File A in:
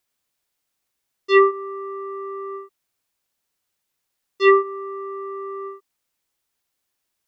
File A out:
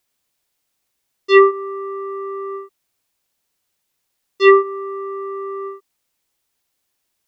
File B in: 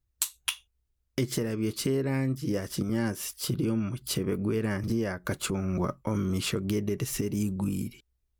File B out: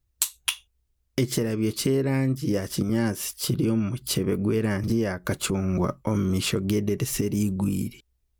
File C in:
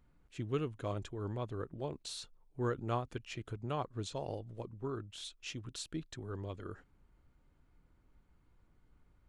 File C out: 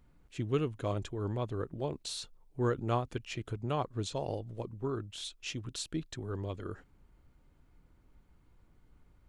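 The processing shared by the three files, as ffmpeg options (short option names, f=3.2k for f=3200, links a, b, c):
-af "equalizer=f=1.4k:w=1.5:g=-2,volume=4.5dB"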